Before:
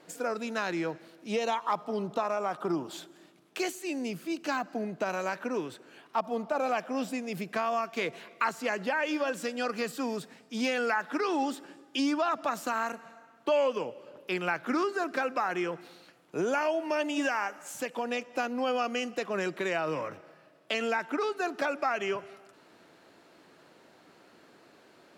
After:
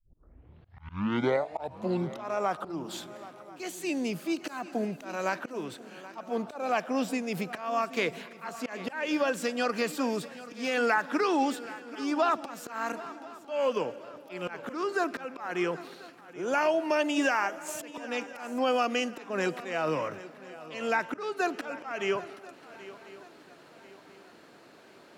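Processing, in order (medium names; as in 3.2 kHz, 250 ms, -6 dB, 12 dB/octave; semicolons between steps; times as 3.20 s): tape start-up on the opening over 2.27 s; slow attack 256 ms; shuffle delay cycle 1038 ms, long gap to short 3:1, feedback 38%, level -17 dB; trim +3 dB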